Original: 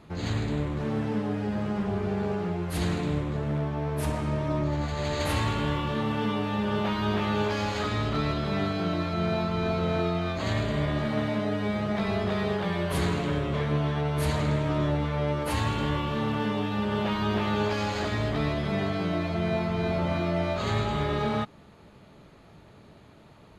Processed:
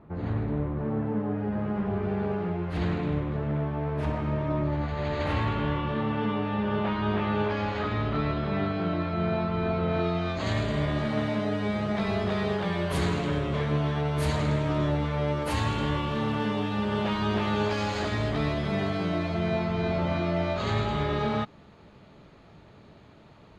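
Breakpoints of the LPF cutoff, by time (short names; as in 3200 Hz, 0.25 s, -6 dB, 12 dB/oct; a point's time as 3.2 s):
1.13 s 1300 Hz
2.15 s 2700 Hz
9.88 s 2700 Hz
10.06 s 4600 Hz
10.56 s 9900 Hz
19.01 s 9900 Hz
19.72 s 6100 Hz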